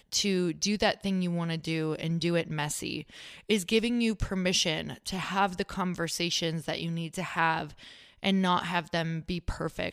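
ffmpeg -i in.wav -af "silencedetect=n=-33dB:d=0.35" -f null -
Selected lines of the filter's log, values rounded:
silence_start: 3.01
silence_end: 3.50 | silence_duration: 0.49
silence_start: 7.66
silence_end: 8.23 | silence_duration: 0.57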